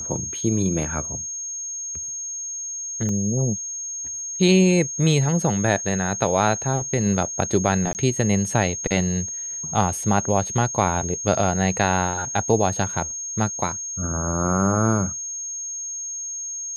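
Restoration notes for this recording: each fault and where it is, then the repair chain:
whine 6.5 kHz -28 dBFS
3.09 s: dropout 2.2 ms
7.93–7.95 s: dropout 19 ms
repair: band-stop 6.5 kHz, Q 30; interpolate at 3.09 s, 2.2 ms; interpolate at 7.93 s, 19 ms

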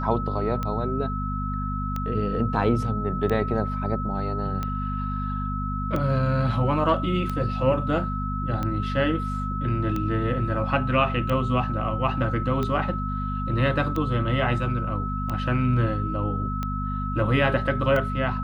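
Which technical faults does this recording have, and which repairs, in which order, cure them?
hum 50 Hz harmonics 5 -29 dBFS
tick 45 rpm -16 dBFS
whine 1.3 kHz -31 dBFS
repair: de-click; band-stop 1.3 kHz, Q 30; de-hum 50 Hz, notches 5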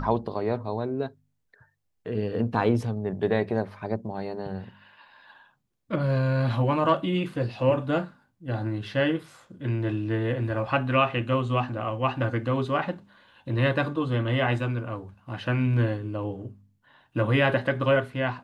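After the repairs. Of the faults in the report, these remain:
nothing left

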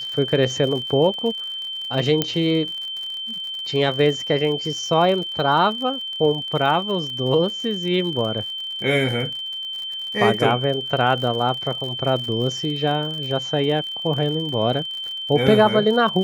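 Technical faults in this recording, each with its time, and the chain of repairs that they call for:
crackle 55 per s -29 dBFS
whine 3.1 kHz -27 dBFS
2.22 s: pop -4 dBFS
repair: de-click; band-stop 3.1 kHz, Q 30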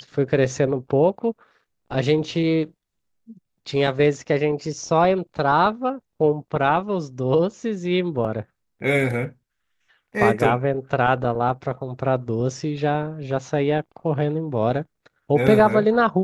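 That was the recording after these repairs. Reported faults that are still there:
nothing left

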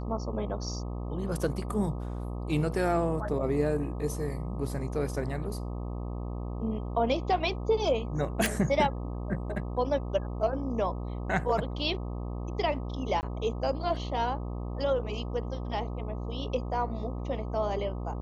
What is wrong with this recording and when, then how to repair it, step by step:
buzz 60 Hz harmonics 21 -35 dBFS
8.46 s: pop
13.21–13.23 s: dropout 19 ms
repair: de-click; de-hum 60 Hz, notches 21; interpolate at 13.21 s, 19 ms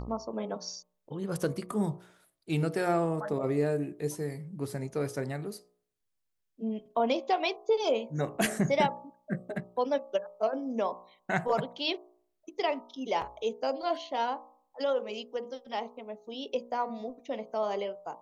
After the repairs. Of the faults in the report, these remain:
nothing left

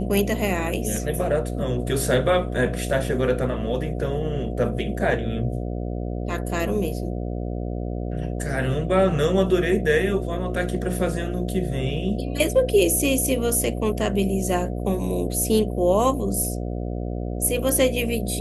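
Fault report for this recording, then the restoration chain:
buzz 60 Hz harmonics 12 -28 dBFS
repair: de-hum 60 Hz, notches 12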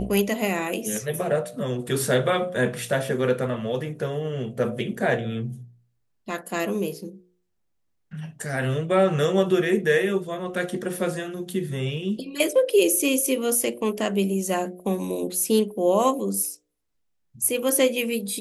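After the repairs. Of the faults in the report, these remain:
nothing left

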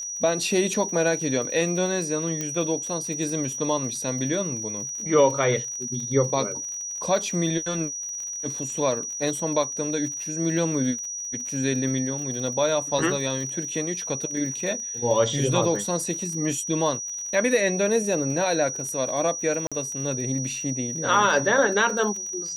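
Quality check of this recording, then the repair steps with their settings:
crackle 44 per s -33 dBFS
whine 5.8 kHz -30 dBFS
2.41 s: pop -14 dBFS
19.67–19.72 s: dropout 46 ms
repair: de-click; band-stop 5.8 kHz, Q 30; interpolate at 19.67 s, 46 ms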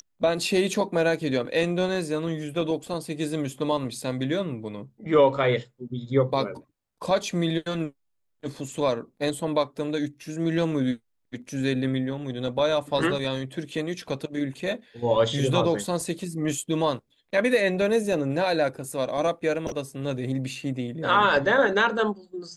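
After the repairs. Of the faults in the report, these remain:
nothing left

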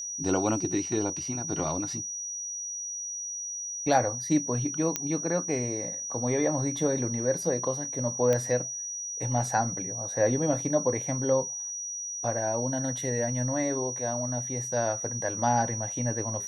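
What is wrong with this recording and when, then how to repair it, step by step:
whine 5.8 kHz -33 dBFS
4.96 s: pop -10 dBFS
8.33 s: pop -14 dBFS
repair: de-click; band-stop 5.8 kHz, Q 30

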